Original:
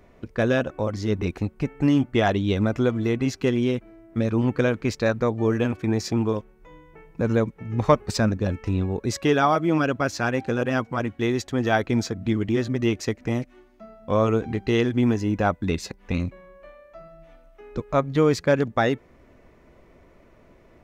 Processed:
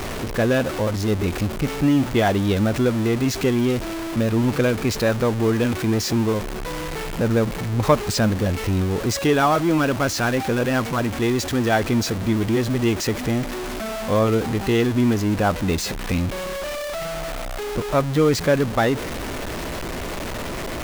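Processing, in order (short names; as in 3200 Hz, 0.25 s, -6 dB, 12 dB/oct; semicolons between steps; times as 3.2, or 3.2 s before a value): zero-crossing step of -23 dBFS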